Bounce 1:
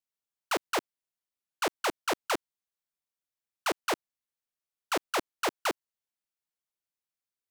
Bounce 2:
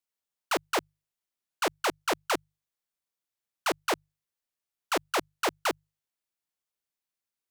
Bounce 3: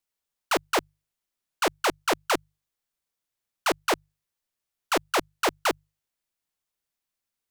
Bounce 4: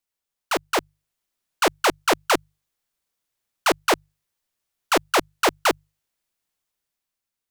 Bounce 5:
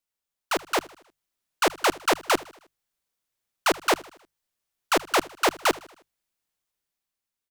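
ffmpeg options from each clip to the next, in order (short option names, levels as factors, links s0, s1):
-af "bandreject=f=50:t=h:w=6,bandreject=f=100:t=h:w=6,bandreject=f=150:t=h:w=6,volume=1.19"
-af "lowshelf=f=69:g=8,volume=1.5"
-af "dynaudnorm=f=200:g=9:m=1.78"
-af "aecho=1:1:78|156|234|312:0.0891|0.0463|0.0241|0.0125,volume=0.75"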